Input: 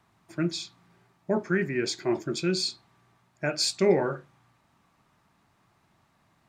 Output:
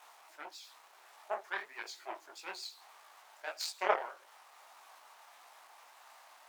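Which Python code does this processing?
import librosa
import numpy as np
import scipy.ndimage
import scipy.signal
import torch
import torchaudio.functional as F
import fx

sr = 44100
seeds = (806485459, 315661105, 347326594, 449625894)

y = x + 0.5 * 10.0 ** (-27.5 / 20.0) * np.sign(x)
y = fx.vibrato(y, sr, rate_hz=9.3, depth_cents=94.0)
y = fx.cheby_harmonics(y, sr, harmonics=(3,), levels_db=(-10,), full_scale_db=-9.0)
y = fx.ladder_highpass(y, sr, hz=620.0, resonance_pct=40)
y = fx.detune_double(y, sr, cents=57)
y = y * 10.0 ** (11.5 / 20.0)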